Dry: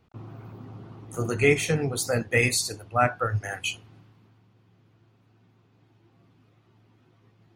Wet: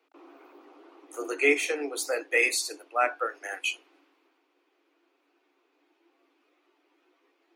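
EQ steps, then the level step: Chebyshev high-pass 280 Hz, order 8; peaking EQ 2.4 kHz +5 dB 0.42 oct; -2.5 dB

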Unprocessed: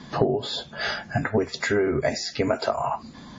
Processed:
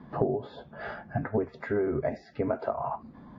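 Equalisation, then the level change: low-pass 1.2 kHz 12 dB/octave; -5.0 dB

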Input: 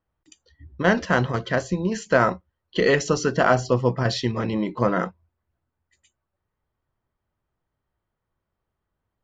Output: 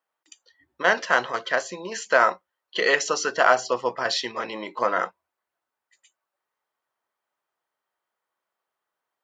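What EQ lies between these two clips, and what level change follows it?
high-pass 670 Hz 12 dB/octave; +3.0 dB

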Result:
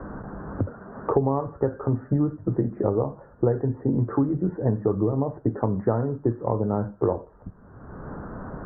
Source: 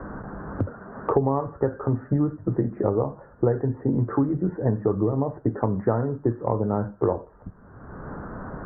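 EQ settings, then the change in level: low-pass 1.5 kHz 6 dB/octave; 0.0 dB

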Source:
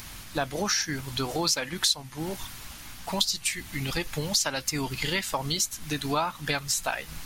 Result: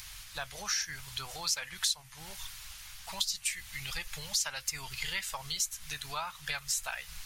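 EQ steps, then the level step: dynamic bell 4.2 kHz, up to -5 dB, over -38 dBFS, Q 1.2; amplifier tone stack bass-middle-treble 10-0-10; treble shelf 9.4 kHz -6 dB; 0.0 dB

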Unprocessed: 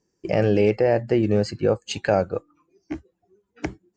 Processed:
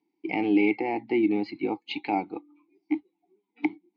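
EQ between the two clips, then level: vowel filter u; cabinet simulation 170–5300 Hz, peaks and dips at 740 Hz +8 dB, 2.1 kHz +9 dB, 3.1 kHz +4 dB; peaking EQ 3.9 kHz +14 dB 0.51 oct; +7.0 dB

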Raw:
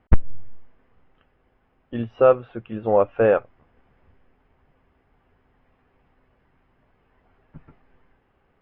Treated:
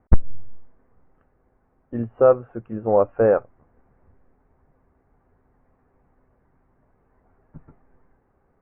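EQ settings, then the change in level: Bessel low-pass 1.2 kHz, order 8; +1.0 dB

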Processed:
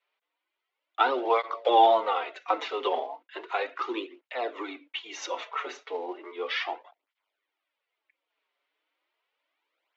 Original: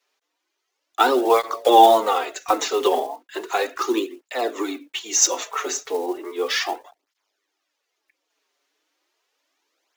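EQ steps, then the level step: cabinet simulation 290–2700 Hz, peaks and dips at 400 Hz -4 dB, 780 Hz -4 dB, 1.2 kHz -4 dB, 1.7 kHz -8 dB, 2.6 kHz -4 dB; tilt EQ +2 dB/octave; bass shelf 390 Hz -6.5 dB; -1.0 dB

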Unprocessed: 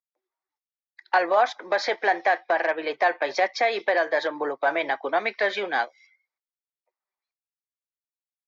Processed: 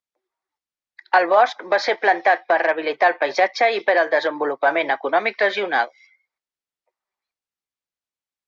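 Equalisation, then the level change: distance through air 54 m; +5.5 dB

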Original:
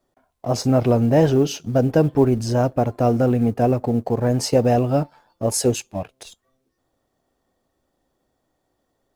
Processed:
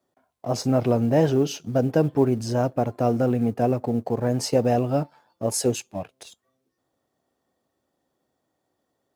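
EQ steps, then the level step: high-pass 100 Hz; -3.5 dB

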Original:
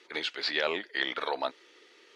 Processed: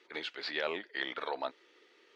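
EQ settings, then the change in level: treble shelf 5.1 kHz -9.5 dB; -4.5 dB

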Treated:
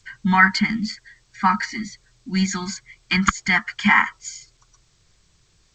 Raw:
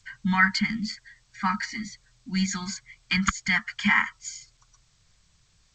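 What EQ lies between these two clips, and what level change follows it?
dynamic bell 730 Hz, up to +7 dB, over -39 dBFS, Q 0.73; peaking EQ 370 Hz +9 dB 0.77 oct; +3.0 dB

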